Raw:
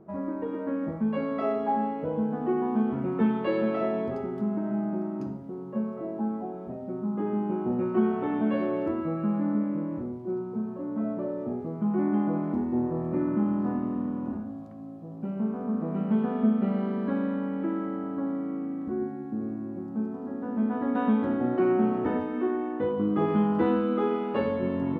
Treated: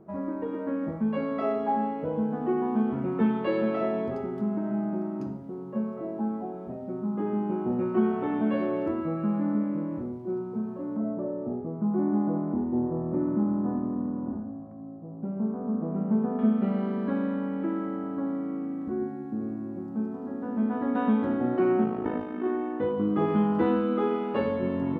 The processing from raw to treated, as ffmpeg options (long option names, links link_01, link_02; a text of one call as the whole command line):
ffmpeg -i in.wav -filter_complex "[0:a]asettb=1/sr,asplit=3[link_01][link_02][link_03];[link_01]atrim=end=10.974[link_04];[link_02]atrim=start=10.97:end=16.39,asetpts=PTS-STARTPTS,afade=type=in:duration=0.004:curve=qsin,afade=type=out:start_time=5.416:duration=0.004:curve=qsin,lowpass=1100[link_05];[link_03]atrim=start=16.386[link_06];[link_04][link_05]acrossfade=duration=0.004:curve1=hsin:curve2=qsin[link_07];[link_07][link_06]acrossfade=duration=0.004:curve1=qsin:curve2=hsin,asplit=3[link_08][link_09][link_10];[link_08]afade=type=out:start_time=21.83:duration=0.02[link_11];[link_09]tremolo=f=53:d=0.667,afade=type=in:start_time=21.83:duration=0.02,afade=type=out:start_time=22.44:duration=0.02[link_12];[link_10]afade=type=in:start_time=22.44:duration=0.02[link_13];[link_11][link_12][link_13]amix=inputs=3:normalize=0" out.wav